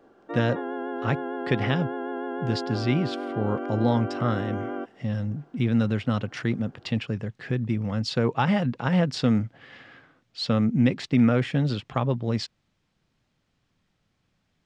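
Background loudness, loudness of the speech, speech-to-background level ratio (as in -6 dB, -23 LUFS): -32.5 LUFS, -26.5 LUFS, 6.0 dB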